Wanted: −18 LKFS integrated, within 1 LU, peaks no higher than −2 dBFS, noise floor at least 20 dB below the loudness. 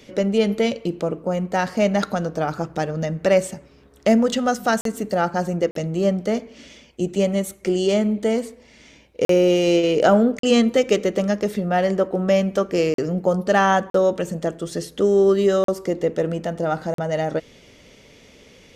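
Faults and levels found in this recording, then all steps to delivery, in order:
number of dropouts 8; longest dropout 43 ms; integrated loudness −21.0 LKFS; sample peak −4.0 dBFS; target loudness −18.0 LKFS
→ repair the gap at 0:04.81/0:05.71/0:09.25/0:10.39/0:12.94/0:13.90/0:15.64/0:16.94, 43 ms
level +3 dB
brickwall limiter −2 dBFS

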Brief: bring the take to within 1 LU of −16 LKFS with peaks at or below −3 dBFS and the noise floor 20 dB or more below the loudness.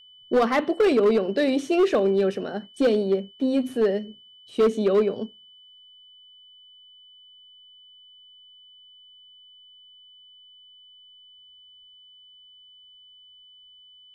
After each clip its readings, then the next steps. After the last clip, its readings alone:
share of clipped samples 0.9%; peaks flattened at −14.5 dBFS; interfering tone 3,000 Hz; level of the tone −49 dBFS; integrated loudness −23.0 LKFS; sample peak −14.5 dBFS; target loudness −16.0 LKFS
→ clipped peaks rebuilt −14.5 dBFS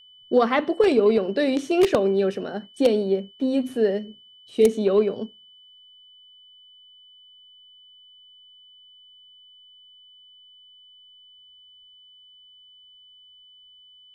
share of clipped samples 0.0%; interfering tone 3,000 Hz; level of the tone −49 dBFS
→ notch filter 3,000 Hz, Q 30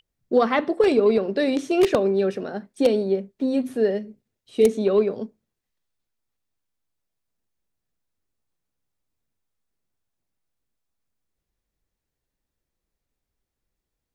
interfering tone none found; integrated loudness −21.5 LKFS; sample peak −5.5 dBFS; target loudness −16.0 LKFS
→ level +5.5 dB
brickwall limiter −3 dBFS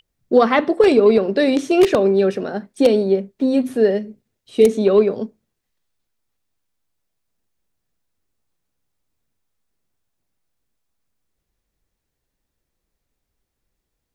integrated loudness −16.5 LKFS; sample peak −3.0 dBFS; background noise floor −78 dBFS

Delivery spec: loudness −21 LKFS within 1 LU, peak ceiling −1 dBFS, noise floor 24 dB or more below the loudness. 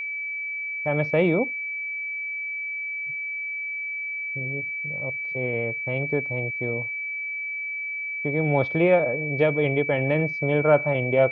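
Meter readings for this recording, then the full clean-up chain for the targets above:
interfering tone 2,300 Hz; level of the tone −28 dBFS; integrated loudness −25.0 LKFS; sample peak −7.0 dBFS; target loudness −21.0 LKFS
→ notch filter 2,300 Hz, Q 30
level +4 dB

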